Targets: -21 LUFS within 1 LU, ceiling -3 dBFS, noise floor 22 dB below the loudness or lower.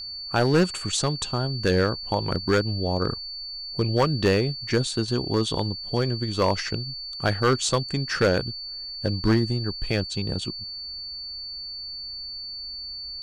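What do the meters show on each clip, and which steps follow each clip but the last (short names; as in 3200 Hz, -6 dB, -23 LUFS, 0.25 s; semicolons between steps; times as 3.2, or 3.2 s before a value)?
clipped 0.6%; flat tops at -13.5 dBFS; steady tone 4500 Hz; tone level -33 dBFS; loudness -25.5 LUFS; peak -13.5 dBFS; loudness target -21.0 LUFS
-> clip repair -13.5 dBFS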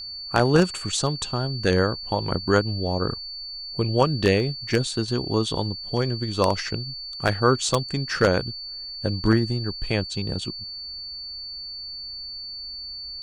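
clipped 0.0%; steady tone 4500 Hz; tone level -33 dBFS
-> notch 4500 Hz, Q 30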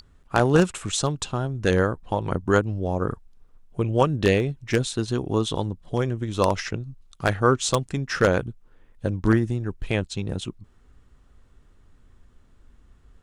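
steady tone none; loudness -24.5 LUFS; peak -4.5 dBFS; loudness target -21.0 LUFS
-> gain +3.5 dB; limiter -3 dBFS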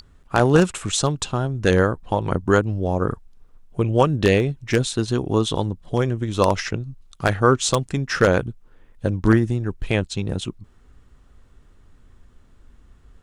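loudness -21.0 LUFS; peak -3.0 dBFS; noise floor -54 dBFS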